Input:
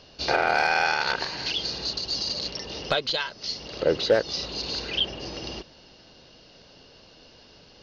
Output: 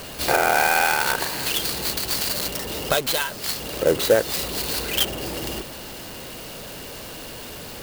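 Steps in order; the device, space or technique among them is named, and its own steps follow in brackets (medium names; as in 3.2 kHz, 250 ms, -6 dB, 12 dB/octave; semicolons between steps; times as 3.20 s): early CD player with a faulty converter (jump at every zero crossing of -35 dBFS; sampling jitter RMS 0.041 ms); trim +3 dB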